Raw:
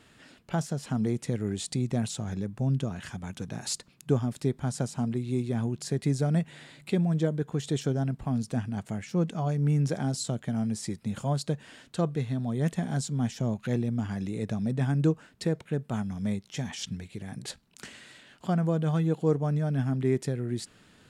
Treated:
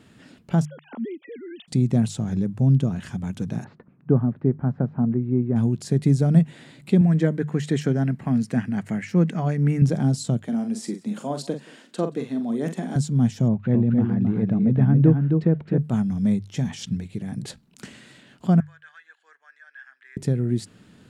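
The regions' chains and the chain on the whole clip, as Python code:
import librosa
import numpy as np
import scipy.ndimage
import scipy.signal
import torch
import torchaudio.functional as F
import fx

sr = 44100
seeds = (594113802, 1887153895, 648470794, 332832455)

y = fx.chain(x, sr, fx.sine_speech(),
    fx.highpass(hz=1300.0, slope=6), at=(0.65, 1.68))
y = fx.chain(y, sr, fx.lowpass(hz=1700.0, slope=24),
    fx.low_shelf(hz=69.0, db=-10.0), at=(3.64, 5.56))
y = fx.chain(y, sr, fx.highpass(hz=150.0, slope=12),
    fx.peak_eq(hz=1900.0, db=12.0, octaves=0.82),
    fx.notch(hz=3500.0, q=14.0), at=(7.01, 9.82))
y = fx.chain(y, sr, fx.highpass(hz=240.0, slope=24),
    fx.doubler(ms=43.0, db=-8),
    fx.echo_single(ms=177, db=-23.0), at=(10.43, 12.96))
y = fx.chain(y, sr, fx.lowpass(hz=2000.0, slope=12),
    fx.echo_single(ms=265, db=-5.0), at=(13.48, 15.78))
y = fx.chain(y, sr, fx.ladder_highpass(hz=1600.0, resonance_pct=85),
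    fx.air_absorb(metres=63.0), at=(18.6, 20.17))
y = fx.peak_eq(y, sr, hz=170.0, db=10.5, octaves=2.5)
y = fx.hum_notches(y, sr, base_hz=50, count=3)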